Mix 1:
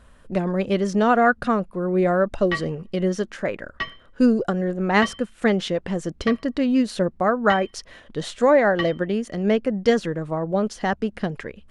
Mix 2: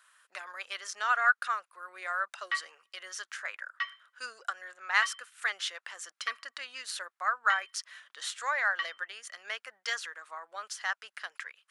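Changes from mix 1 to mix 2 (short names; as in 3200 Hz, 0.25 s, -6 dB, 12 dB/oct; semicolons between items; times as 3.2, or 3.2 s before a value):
speech: add high shelf 4700 Hz +11.5 dB; master: add ladder high-pass 1100 Hz, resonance 40%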